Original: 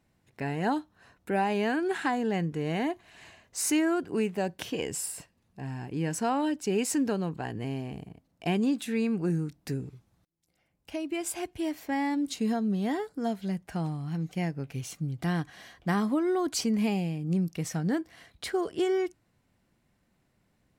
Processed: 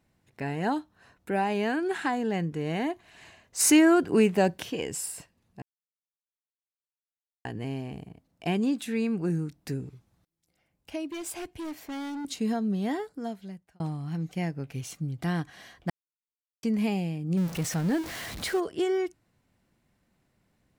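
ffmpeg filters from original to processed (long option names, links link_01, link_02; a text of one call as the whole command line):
ffmpeg -i in.wav -filter_complex "[0:a]asplit=3[link_01][link_02][link_03];[link_01]afade=type=out:start_time=3.59:duration=0.02[link_04];[link_02]acontrast=89,afade=type=in:start_time=3.59:duration=0.02,afade=type=out:start_time=4.58:duration=0.02[link_05];[link_03]afade=type=in:start_time=4.58:duration=0.02[link_06];[link_04][link_05][link_06]amix=inputs=3:normalize=0,asettb=1/sr,asplit=3[link_07][link_08][link_09];[link_07]atrim=end=11.114[link_10];[link_08]atrim=start=11.11:end=12.25,asetpts=PTS-STARTPTS,afade=type=in:duration=0.004:curve=qsin,afade=type=out:start_time=1.136:duration=0.004:curve=qsin,asoftclip=type=hard:threshold=-33.5dB[link_11];[link_09]atrim=start=12.246[link_12];[link_10][link_11]acrossfade=duration=0.004:curve1=hsin:curve2=qsin[link_13];[link_13][link_12]acrossfade=duration=0.004:curve1=qsin:curve2=hsin,asettb=1/sr,asplit=3[link_14][link_15][link_16];[link_14]atrim=end=17.374[link_17];[link_15]atrim=start=17.37:end=18.6,asetpts=PTS-STARTPTS,afade=type=in:duration=0.004:curve=qsin,afade=type=out:start_time=1.226:duration=0.004:curve=qsin,aeval=exprs='val(0)+0.5*0.0224*sgn(val(0))':channel_layout=same[link_18];[link_16]atrim=start=18.596[link_19];[link_17][link_18]acrossfade=duration=0.004:curve1=hsin:curve2=qsin[link_20];[link_20][link_19]acrossfade=duration=0.004:curve1=qsin:curve2=hsin,asplit=6[link_21][link_22][link_23][link_24][link_25][link_26];[link_21]atrim=end=5.62,asetpts=PTS-STARTPTS,afade=type=out:start_time=5.616:duration=0.004:curve=hsin[link_27];[link_22]atrim=start=5.62:end=7.45,asetpts=PTS-STARTPTS,volume=0[link_28];[link_23]atrim=start=7.45:end=13.8,asetpts=PTS-STARTPTS,afade=type=in:duration=0.004:curve=hsin,afade=type=out:start_time=5.46:duration=0.89[link_29];[link_24]atrim=start=13.8:end=15.9,asetpts=PTS-STARTPTS,afade=type=in:duration=0.004:curve=hsin,afade=type=out:start_time=2.096:duration=0.004:curve=hsin[link_30];[link_25]atrim=start=15.9:end=16.63,asetpts=PTS-STARTPTS,volume=0[link_31];[link_26]atrim=start=16.63,asetpts=PTS-STARTPTS,afade=type=in:duration=0.004:curve=hsin[link_32];[link_27][link_28][link_29][link_30][link_31][link_32]concat=n=6:v=0:a=1" out.wav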